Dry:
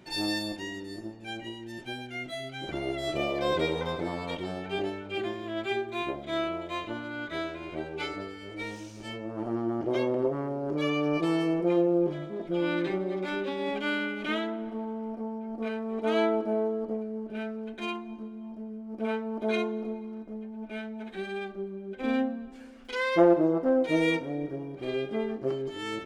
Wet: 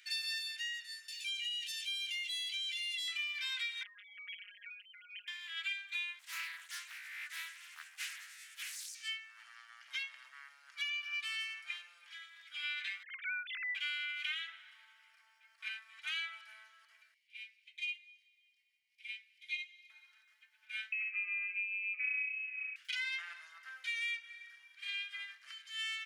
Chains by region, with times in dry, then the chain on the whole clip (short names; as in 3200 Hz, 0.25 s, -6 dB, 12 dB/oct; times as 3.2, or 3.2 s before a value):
1.08–3.08 inverse Chebyshev high-pass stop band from 630 Hz, stop band 70 dB + fast leveller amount 70%
3.83–5.28 sine-wave speech + compressor 10:1, threshold -39 dBFS + robotiser 206 Hz
6.19–8.95 EQ curve 160 Hz 0 dB, 300 Hz +6 dB, 3600 Hz -12 dB, 7500 Hz +12 dB + Doppler distortion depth 0.94 ms
13.03–13.75 sine-wave speech + bell 1400 Hz +7.5 dB 0.87 oct
17.14–19.9 Chebyshev band-stop 100–2100 Hz, order 5 + high shelf 4000 Hz -9 dB + doubler 16 ms -12 dB
20.92–22.76 HPF 82 Hz 24 dB/oct + inverted band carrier 2800 Hz
whole clip: steep high-pass 1700 Hz 36 dB/oct; dynamic EQ 2700 Hz, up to +5 dB, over -49 dBFS; compressor 6:1, threshold -39 dBFS; gain +3 dB